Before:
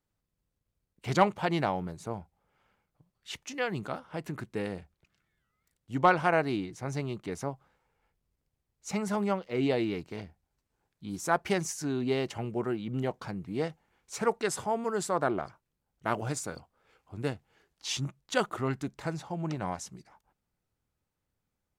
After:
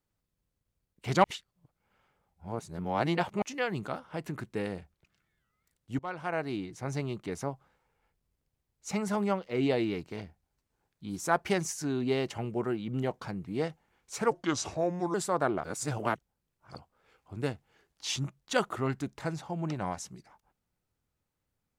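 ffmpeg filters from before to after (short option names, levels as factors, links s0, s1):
-filter_complex "[0:a]asplit=8[s0][s1][s2][s3][s4][s5][s6][s7];[s0]atrim=end=1.242[s8];[s1]atrim=start=1.238:end=3.422,asetpts=PTS-STARTPTS,areverse[s9];[s2]atrim=start=3.418:end=5.99,asetpts=PTS-STARTPTS,afade=t=out:st=2.568:d=0.004:c=hsin:silence=0.0668344[s10];[s3]atrim=start=5.99:end=14.314,asetpts=PTS-STARTPTS,afade=t=in:d=0.86:silence=0.0668344[s11];[s4]atrim=start=14.31:end=14.95,asetpts=PTS-STARTPTS,asetrate=33957,aresample=44100[s12];[s5]atrim=start=14.946:end=15.452[s13];[s6]atrim=start=15.448:end=16.562,asetpts=PTS-STARTPTS,areverse[s14];[s7]atrim=start=16.558[s15];[s8][s9]acrossfade=d=0.004:c1=hsin:c2=hsin[s16];[s10][s11]concat=n=2:v=0:a=1[s17];[s16][s17]acrossfade=d=0.004:c1=hsin:c2=hsin[s18];[s18][s12]acrossfade=d=0.004:c1=hsin:c2=hsin[s19];[s19][s13]acrossfade=d=0.004:c1=hsin:c2=hsin[s20];[s20][s14]acrossfade=d=0.004:c1=hsin:c2=hsin[s21];[s21][s15]acrossfade=d=0.004:c1=hsin:c2=hsin"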